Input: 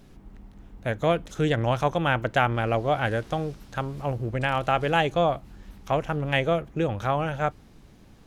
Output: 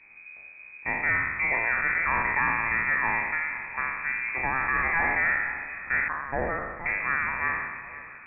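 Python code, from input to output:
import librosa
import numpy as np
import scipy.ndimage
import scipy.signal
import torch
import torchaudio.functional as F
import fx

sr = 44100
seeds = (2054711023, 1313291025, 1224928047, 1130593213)

p1 = fx.spec_trails(x, sr, decay_s=1.29)
p2 = fx.highpass(p1, sr, hz=780.0, slope=24, at=(6.08, 6.86))
p3 = np.clip(p2, -10.0 ** (-16.0 / 20.0), 10.0 ** (-16.0 / 20.0))
p4 = fx.freq_invert(p3, sr, carrier_hz=2500)
p5 = fx.air_absorb(p4, sr, metres=410.0)
y = p5 + fx.echo_feedback(p5, sr, ms=505, feedback_pct=53, wet_db=-16, dry=0)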